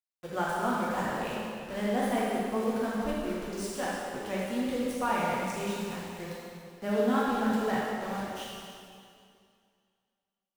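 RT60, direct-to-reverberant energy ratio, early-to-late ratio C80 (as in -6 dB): 2.3 s, -7.0 dB, -0.5 dB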